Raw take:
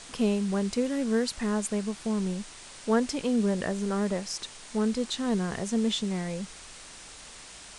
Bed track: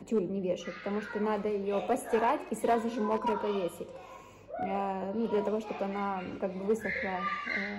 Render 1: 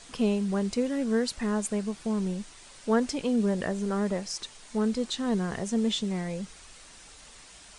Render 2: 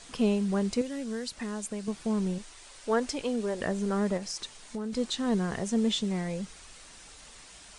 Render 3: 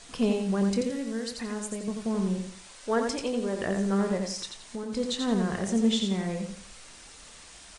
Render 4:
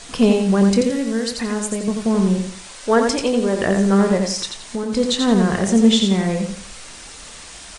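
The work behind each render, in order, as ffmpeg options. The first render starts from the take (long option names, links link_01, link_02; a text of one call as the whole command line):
ffmpeg -i in.wav -af "afftdn=noise_reduction=6:noise_floor=-47" out.wav
ffmpeg -i in.wav -filter_complex "[0:a]asettb=1/sr,asplit=3[link_01][link_02][link_03];[link_01]atrim=end=0.814[link_04];[link_02]atrim=start=0.81:end=1.88,asetpts=PTS-STARTPTS,afade=type=in:duration=0.004:curve=qsin,afade=type=out:start_time=1.066:duration=0.004:curve=qsin,acrossover=split=85|2600[link_05][link_06][link_07];[link_05]acompressor=threshold=-56dB:ratio=4[link_08];[link_06]acompressor=threshold=-34dB:ratio=4[link_09];[link_07]acompressor=threshold=-36dB:ratio=4[link_10];[link_08][link_09][link_10]amix=inputs=3:normalize=0[link_11];[link_03]atrim=start=1.876[link_12];[link_04][link_11]acrossfade=duration=0.004:curve1=hsin:curve2=qsin[link_13];[link_13][link_12]acrossfade=duration=0.004:curve1=qsin:curve2=hsin,asettb=1/sr,asplit=3[link_14][link_15][link_16];[link_14]atrim=end=2.384[link_17];[link_15]atrim=start=2.38:end=3.61,asetpts=PTS-STARTPTS,afade=type=in:duration=0.004:curve=qsin,afade=type=out:start_time=1.226:duration=0.004:curve=qsin,equalizer=frequency=180:width_type=o:width=0.77:gain=-13[link_18];[link_16]atrim=start=3.606[link_19];[link_17][link_18]acrossfade=duration=0.004:curve1=hsin:curve2=qsin[link_20];[link_20][link_19]acrossfade=duration=0.004:curve1=qsin:curve2=hsin,asettb=1/sr,asplit=3[link_21][link_22][link_23];[link_21]atrim=end=4.174[link_24];[link_22]atrim=start=4.17:end=4.93,asetpts=PTS-STARTPTS,afade=type=in:duration=0.004:curve=qsin,afade=type=out:start_time=0.756:duration=0.004:curve=qsin,acompressor=threshold=-31dB:ratio=6:attack=3.2:release=140:knee=1:detection=peak[link_25];[link_23]atrim=start=4.926[link_26];[link_24][link_25]acrossfade=duration=0.004:curve1=hsin:curve2=qsin[link_27];[link_27][link_26]acrossfade=duration=0.004:curve1=qsin:curve2=hsin" out.wav
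ffmpeg -i in.wav -filter_complex "[0:a]asplit=2[link_01][link_02];[link_02]adelay=26,volume=-12dB[link_03];[link_01][link_03]amix=inputs=2:normalize=0,aecho=1:1:86|172|258|344:0.562|0.174|0.054|0.0168" out.wav
ffmpeg -i in.wav -af "volume=11dB,alimiter=limit=-3dB:level=0:latency=1" out.wav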